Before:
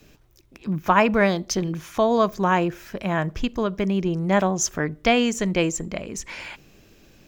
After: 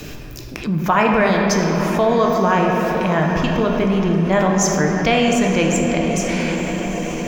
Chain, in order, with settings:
on a send: feedback delay with all-pass diffusion 924 ms, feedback 57%, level −15.5 dB
on the sum: rectangular room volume 200 cubic metres, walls hard, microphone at 0.43 metres
envelope flattener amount 50%

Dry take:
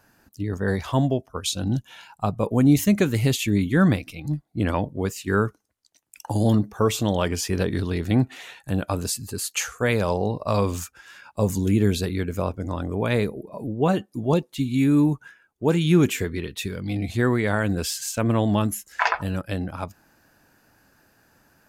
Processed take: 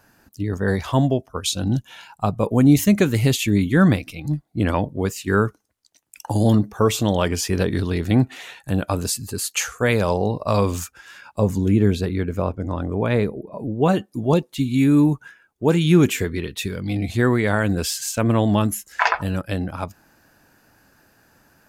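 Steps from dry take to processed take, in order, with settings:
0:11.40–0:13.72: high-shelf EQ 3,400 Hz −11 dB
level +3 dB

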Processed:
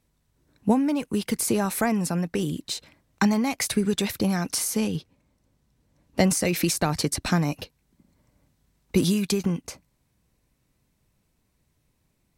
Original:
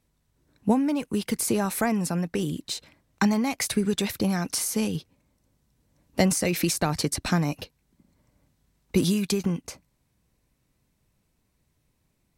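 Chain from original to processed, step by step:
0:04.77–0:06.24: high-shelf EQ 7,500 Hz −6.5 dB
level +1 dB

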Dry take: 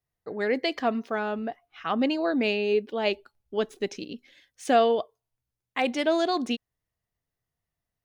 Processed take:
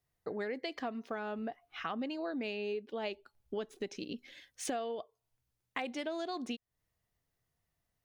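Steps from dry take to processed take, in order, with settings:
downward compressor 6 to 1, threshold −39 dBFS, peak gain reduction 21 dB
level +2.5 dB

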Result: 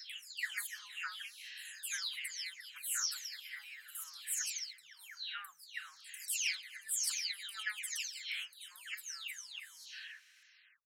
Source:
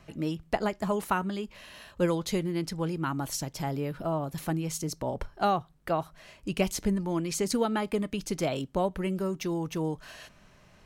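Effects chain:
every frequency bin delayed by itself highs early, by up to 431 ms
elliptic high-pass filter 1,700 Hz, stop band 60 dB
level +2.5 dB

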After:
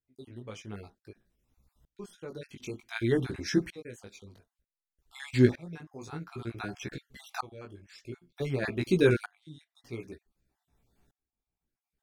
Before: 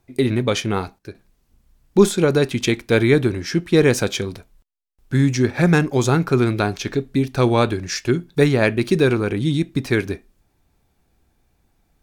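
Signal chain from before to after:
time-frequency cells dropped at random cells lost 36%
chorus effect 0.58 Hz, delay 15 ms, depth 4.7 ms
tremolo with a ramp in dB swelling 0.54 Hz, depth 28 dB

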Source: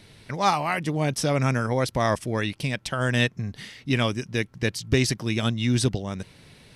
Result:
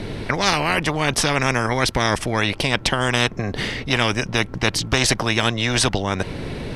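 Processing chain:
spectral tilt −4 dB per octave
every bin compressed towards the loudest bin 4 to 1
level −3 dB

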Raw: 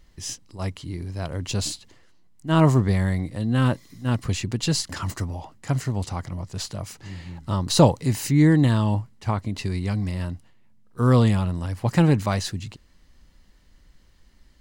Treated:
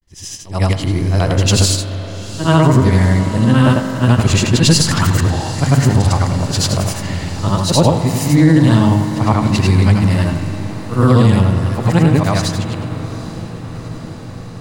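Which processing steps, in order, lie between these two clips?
every overlapping window played backwards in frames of 214 ms
downward expander −52 dBFS
automatic gain control gain up to 15.5 dB
feedback delay with all-pass diffusion 803 ms, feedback 71%, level −16 dB
convolution reverb RT60 3.7 s, pre-delay 42 ms, DRR 8.5 dB
boost into a limiter +4.5 dB
level −1 dB

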